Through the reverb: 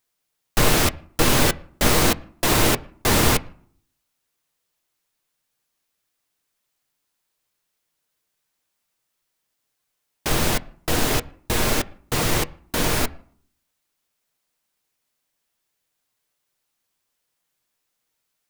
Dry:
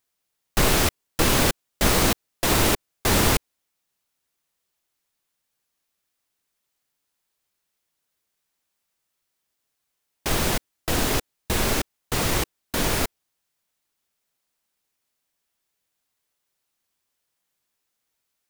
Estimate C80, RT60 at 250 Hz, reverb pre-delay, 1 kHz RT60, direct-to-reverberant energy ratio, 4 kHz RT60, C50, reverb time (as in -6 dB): 24.5 dB, 0.75 s, 6 ms, 0.55 s, 10.5 dB, 0.40 s, 22.5 dB, 0.55 s